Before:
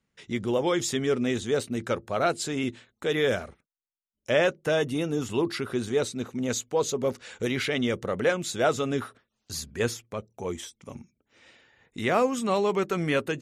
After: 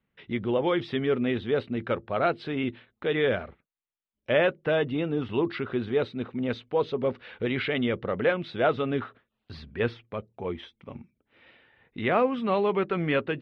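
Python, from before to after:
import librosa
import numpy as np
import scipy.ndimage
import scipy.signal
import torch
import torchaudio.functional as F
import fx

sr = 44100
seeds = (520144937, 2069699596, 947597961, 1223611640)

y = scipy.signal.sosfilt(scipy.signal.cheby2(4, 40, 6500.0, 'lowpass', fs=sr, output='sos'), x)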